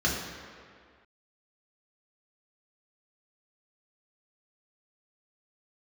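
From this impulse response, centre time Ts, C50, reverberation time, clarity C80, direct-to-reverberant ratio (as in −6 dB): 74 ms, 2.5 dB, 2.0 s, 4.5 dB, −4.0 dB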